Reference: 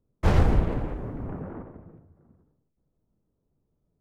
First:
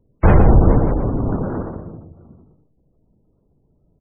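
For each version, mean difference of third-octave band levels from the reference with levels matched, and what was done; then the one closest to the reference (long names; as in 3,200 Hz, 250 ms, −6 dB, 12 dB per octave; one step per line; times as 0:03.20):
4.5 dB: gate on every frequency bin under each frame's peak −30 dB strong
single-tap delay 122 ms −7.5 dB
boost into a limiter +14.5 dB
level −1 dB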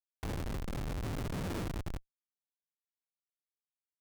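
13.5 dB: in parallel at +1 dB: brickwall limiter −15.5 dBFS, peak gain reduction 7 dB
on the sum: downward compressor 5 to 1, threshold −31 dBFS, peak gain reduction 18.5 dB
comparator with hysteresis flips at −36.5 dBFS
level +1 dB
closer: first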